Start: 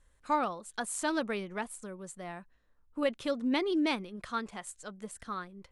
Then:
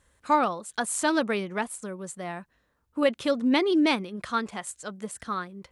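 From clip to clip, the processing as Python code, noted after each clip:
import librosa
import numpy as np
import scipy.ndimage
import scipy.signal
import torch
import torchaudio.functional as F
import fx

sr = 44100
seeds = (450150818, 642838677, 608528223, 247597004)

y = scipy.signal.sosfilt(scipy.signal.butter(2, 69.0, 'highpass', fs=sr, output='sos'), x)
y = y * librosa.db_to_amplitude(7.0)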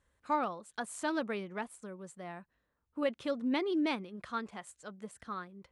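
y = fx.high_shelf(x, sr, hz=4900.0, db=-8.0)
y = y * librosa.db_to_amplitude(-9.0)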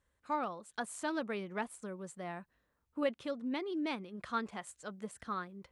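y = fx.rider(x, sr, range_db=4, speed_s=0.5)
y = y * librosa.db_to_amplitude(-2.0)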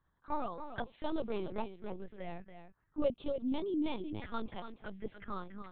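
y = fx.env_phaser(x, sr, low_hz=410.0, high_hz=1800.0, full_db=-36.5)
y = y + 10.0 ** (-9.5 / 20.0) * np.pad(y, (int(287 * sr / 1000.0), 0))[:len(y)]
y = fx.lpc_vocoder(y, sr, seeds[0], excitation='pitch_kept', order=10)
y = y * librosa.db_to_amplitude(3.0)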